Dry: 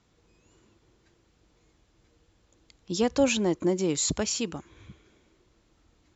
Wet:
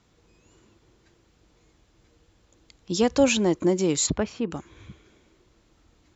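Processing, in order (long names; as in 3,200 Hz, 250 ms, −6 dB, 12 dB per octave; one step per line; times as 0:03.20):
0:04.06–0:04.50: low-pass filter 2,700 Hz → 1,300 Hz 12 dB per octave
level +3.5 dB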